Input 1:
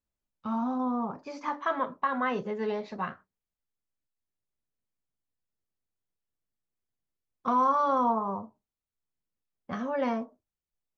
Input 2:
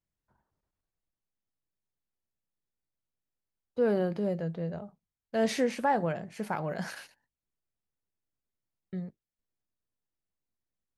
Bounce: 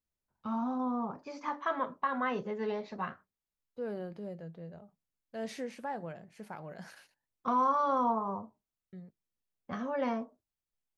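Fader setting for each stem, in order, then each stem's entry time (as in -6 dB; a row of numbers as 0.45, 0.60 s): -3.5, -11.5 dB; 0.00, 0.00 s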